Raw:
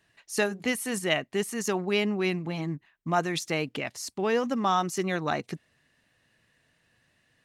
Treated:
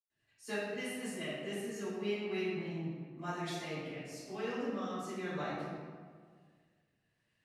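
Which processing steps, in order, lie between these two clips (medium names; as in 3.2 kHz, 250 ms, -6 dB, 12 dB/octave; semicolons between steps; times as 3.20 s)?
rotary cabinet horn 6.7 Hz, later 1 Hz, at 0.46 s; reverberation RT60 1.7 s, pre-delay 96 ms, DRR -60 dB; trim +2 dB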